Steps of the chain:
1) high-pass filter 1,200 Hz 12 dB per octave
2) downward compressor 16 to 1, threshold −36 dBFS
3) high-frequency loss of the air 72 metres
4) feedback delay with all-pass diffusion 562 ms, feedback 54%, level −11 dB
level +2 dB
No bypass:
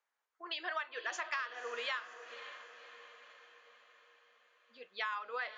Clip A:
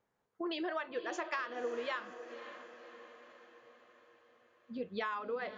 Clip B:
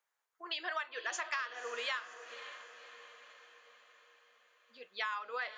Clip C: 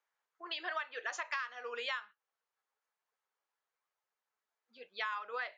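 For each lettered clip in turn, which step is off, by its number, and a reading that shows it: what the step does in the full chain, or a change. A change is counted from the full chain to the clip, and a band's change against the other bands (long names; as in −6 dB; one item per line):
1, 250 Hz band +22.0 dB
3, 8 kHz band +5.0 dB
4, echo-to-direct ratio −9.5 dB to none audible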